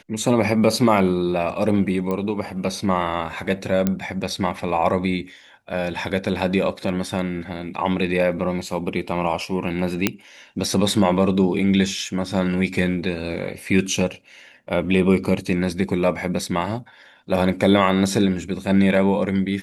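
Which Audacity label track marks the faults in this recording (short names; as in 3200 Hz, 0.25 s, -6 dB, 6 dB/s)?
2.110000	2.110000	pop -14 dBFS
3.870000	3.870000	pop -7 dBFS
10.070000	10.070000	pop -2 dBFS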